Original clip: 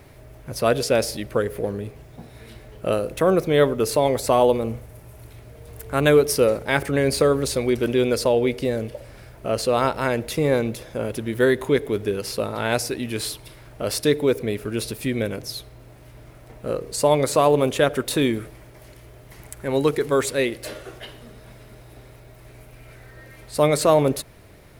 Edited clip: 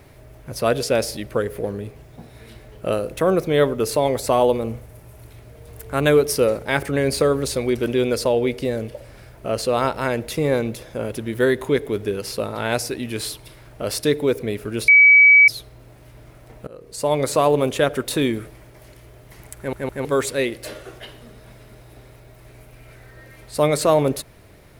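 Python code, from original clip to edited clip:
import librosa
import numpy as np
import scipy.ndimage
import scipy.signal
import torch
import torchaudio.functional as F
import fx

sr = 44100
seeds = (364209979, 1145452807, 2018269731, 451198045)

y = fx.edit(x, sr, fx.bleep(start_s=14.88, length_s=0.6, hz=2280.0, db=-7.0),
    fx.fade_in_from(start_s=16.67, length_s=0.59, floor_db=-23.0),
    fx.stutter_over(start_s=19.57, slice_s=0.16, count=3), tone=tone)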